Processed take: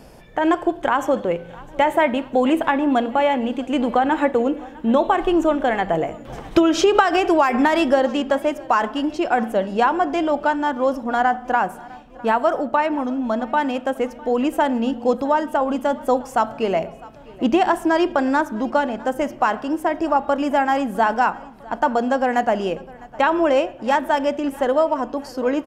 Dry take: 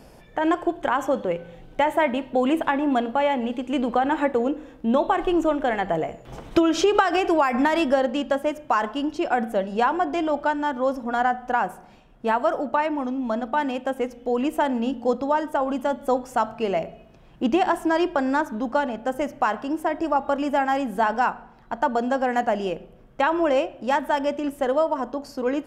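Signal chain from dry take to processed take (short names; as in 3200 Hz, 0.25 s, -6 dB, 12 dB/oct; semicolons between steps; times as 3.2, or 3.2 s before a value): feedback echo 0.655 s, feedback 53%, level -22 dB; gain +3.5 dB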